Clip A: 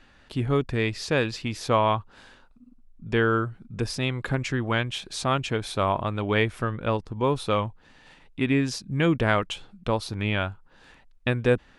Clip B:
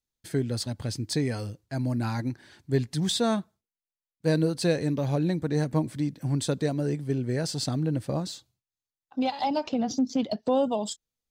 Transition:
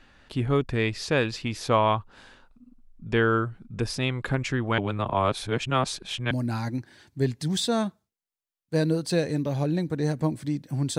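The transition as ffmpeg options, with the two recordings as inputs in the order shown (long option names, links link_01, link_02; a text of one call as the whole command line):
ffmpeg -i cue0.wav -i cue1.wav -filter_complex "[0:a]apad=whole_dur=10.98,atrim=end=10.98,asplit=2[link_01][link_02];[link_01]atrim=end=4.782[link_03];[link_02]atrim=start=4.778:end=6.312,asetpts=PTS-STARTPTS,areverse[link_04];[1:a]atrim=start=1.828:end=6.5[link_05];[link_03][link_04]acrossfade=duration=0.004:curve1=hsin:curve2=hsin[link_06];[link_06][link_05]acrossfade=duration=0.004:curve1=hsin:curve2=hsin" out.wav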